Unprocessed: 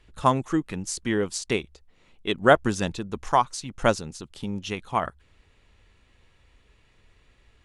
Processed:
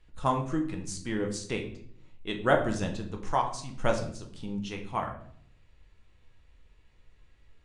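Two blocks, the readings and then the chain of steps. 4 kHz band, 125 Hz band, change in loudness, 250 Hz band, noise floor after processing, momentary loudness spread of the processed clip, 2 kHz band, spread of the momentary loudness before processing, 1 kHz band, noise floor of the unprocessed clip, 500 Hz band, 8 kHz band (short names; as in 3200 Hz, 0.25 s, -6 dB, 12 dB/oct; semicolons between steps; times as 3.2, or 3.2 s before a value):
-7.0 dB, -3.0 dB, -5.5 dB, -4.5 dB, -61 dBFS, 14 LU, -6.5 dB, 14 LU, -6.0 dB, -62 dBFS, -5.5 dB, -7.5 dB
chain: shoebox room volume 110 m³, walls mixed, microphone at 0.6 m; downsampling 22050 Hz; low shelf 130 Hz +5.5 dB; gain -8.5 dB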